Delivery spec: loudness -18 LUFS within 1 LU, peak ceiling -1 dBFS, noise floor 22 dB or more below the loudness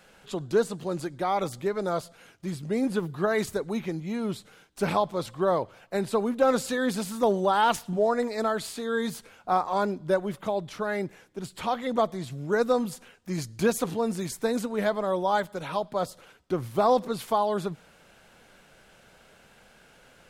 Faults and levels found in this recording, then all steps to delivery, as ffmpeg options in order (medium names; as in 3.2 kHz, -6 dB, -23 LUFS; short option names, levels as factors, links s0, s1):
loudness -28.0 LUFS; peak level -12.0 dBFS; loudness target -18.0 LUFS
-> -af "volume=3.16"